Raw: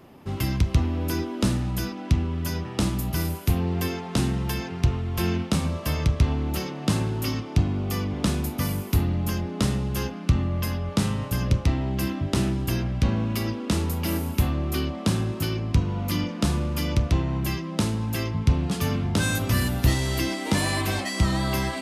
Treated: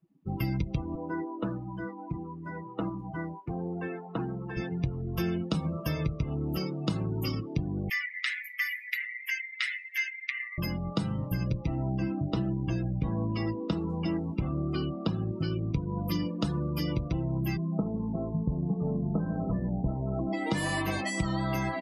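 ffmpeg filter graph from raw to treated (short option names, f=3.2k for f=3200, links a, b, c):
-filter_complex "[0:a]asettb=1/sr,asplit=3[a][b][c];[a]atrim=end=0.954[d];[b]atrim=start=0.95:end=4.57,asetpts=PTS-STARTPTS,afade=t=in:d=0.004:c=qsin,afade=t=out:st=3.616:d=0.004:c=qsin,lowpass=1.6k,aemphasis=mode=production:type=riaa[e];[c]atrim=start=4.566[f];[d][e]acrossfade=d=0.004:c1=hsin:c2=qsin[g];[g][f]acrossfade=d=0.004:c1=qsin:c2=hsin,asettb=1/sr,asplit=3[h][i][j];[h]atrim=end=7.894[k];[i]atrim=start=7.89:end=10.58,asetpts=PTS-STARTPTS,afade=t=in:d=0.004:c=qsin,afade=t=out:st=2.686:d=0.004:c=qsin,highpass=f=2k:t=q:w=8.8,highshelf=f=4k:g=-2[l];[j]atrim=start=10.576[m];[k][l]acrossfade=d=0.004:c1=hsin:c2=qsin[n];[n][m]acrossfade=d=0.004:c1=qsin:c2=hsin,asettb=1/sr,asplit=3[o][p][q];[o]atrim=end=11.994[r];[p]atrim=start=11.99:end=15.68,asetpts=PTS-STARTPTS,afade=t=in:d=0.004:c=qsin,afade=t=out:st=3.686:d=0.004:c=qsin,lowpass=f=8.8k:w=0.5412,lowpass=f=8.8k:w=1.3066,highshelf=f=3.9k:g=-4[s];[q]atrim=start=15.676[t];[r][s]acrossfade=d=0.004:c1=hsin:c2=qsin[u];[u][t]acrossfade=d=0.004:c1=qsin:c2=hsin,asettb=1/sr,asplit=3[v][w][x];[v]atrim=end=17.564[y];[w]atrim=start=17.56:end=20.33,asetpts=PTS-STARTPTS,afade=t=in:d=0.004:c=qsin,afade=t=out:st=2.766:d=0.004:c=qsin,lowpass=f=1.1k:w=0.5412,lowpass=f=1.1k:w=1.3066,aecho=1:1:4.7:0.64,atrim=end_sample=122157[z];[x]atrim=start=20.326[aa];[y][z]acrossfade=d=0.004:c1=hsin:c2=qsin[ab];[ab][aa]acrossfade=d=0.004:c1=qsin:c2=hsin,afftdn=nr=34:nf=-33,aecho=1:1:6.2:0.7,acompressor=threshold=-24dB:ratio=5,volume=-2dB"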